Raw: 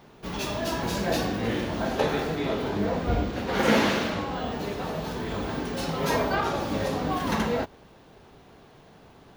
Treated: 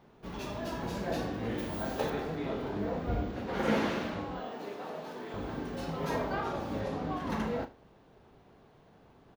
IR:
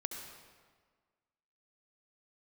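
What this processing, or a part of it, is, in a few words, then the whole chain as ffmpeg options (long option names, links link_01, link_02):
behind a face mask: -filter_complex "[0:a]asettb=1/sr,asplit=3[link_01][link_02][link_03];[link_01]atrim=end=1.584[link_04];[link_02]atrim=start=1.58:end=2.1,asetpts=PTS-STARTPTS,afade=type=in:duration=0.004:curve=qsin,afade=type=out:start_time=0.516:duration=0.004:curve=qsin,aemphasis=mode=production:type=50fm[link_05];[link_03]atrim=start=2.096[link_06];[link_04][link_05]acrossfade=duration=0.004:curve1=hsin:curve2=qsin[link_07];[link_07][link_06]acrossfade=duration=0.004:curve1=qsin:curve2=hsin,highshelf=frequency=2400:gain=-8,asettb=1/sr,asplit=3[link_08][link_09][link_10];[link_08]atrim=end=4.404[link_11];[link_09]atrim=start=4.4:end=5.34,asetpts=PTS-STARTPTS,afade=type=in:duration=0.004:curve=qsin,afade=type=out:start_time=0.936:duration=0.004:curve=qsin,highpass=300[link_12];[link_10]atrim=start=5.336[link_13];[link_11][link_12]acrossfade=duration=0.004:curve1=hsin:curve2=qsin[link_14];[link_14][link_13]acrossfade=duration=0.004:curve1=qsin:curve2=hsin,asettb=1/sr,asplit=3[link_15][link_16][link_17];[link_15]atrim=end=6.804[link_18];[link_16]atrim=start=6.8:end=7.3,asetpts=PTS-STARTPTS,afade=type=in:duration=0.004:curve=qsin,afade=type=out:start_time=0.496:duration=0.004:curve=qsin,highshelf=frequency=11000:gain=-11[link_19];[link_17]atrim=start=7.296[link_20];[link_18][link_19]acrossfade=duration=0.004:curve1=hsin:curve2=qsin[link_21];[link_21][link_20]acrossfade=duration=0.004:curve1=qsin:curve2=hsin,aecho=1:1:37|77:0.251|0.126,volume=-7dB"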